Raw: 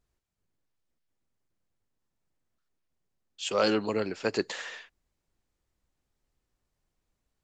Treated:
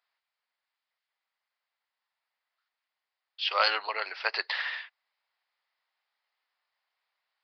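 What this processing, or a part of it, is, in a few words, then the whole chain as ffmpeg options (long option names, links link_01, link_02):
musical greeting card: -af "aresample=11025,aresample=44100,highpass=frequency=780:width=0.5412,highpass=frequency=780:width=1.3066,equalizer=frequency=2000:width_type=o:width=0.26:gain=5,volume=5.5dB"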